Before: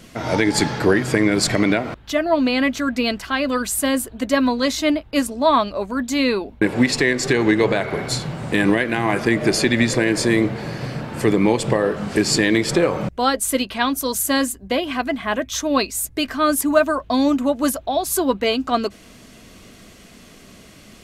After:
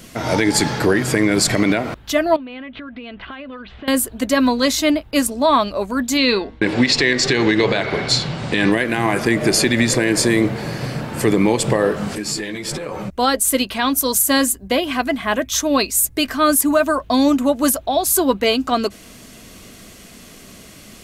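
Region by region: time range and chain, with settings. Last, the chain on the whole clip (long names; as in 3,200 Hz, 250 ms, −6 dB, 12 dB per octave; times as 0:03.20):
0:02.36–0:03.88: Butterworth low-pass 3,500 Hz 48 dB per octave + downward compressor 16 to 1, threshold −32 dBFS
0:06.17–0:08.72: low-pass filter 5,400 Hz + parametric band 4,200 Hz +7.5 dB 1.6 octaves + hum removal 157.6 Hz, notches 13
0:12.15–0:13.18: downward compressor 5 to 1, threshold −22 dBFS + string-ensemble chorus
whole clip: high-shelf EQ 7,700 Hz +9 dB; boost into a limiter +7 dB; level −4.5 dB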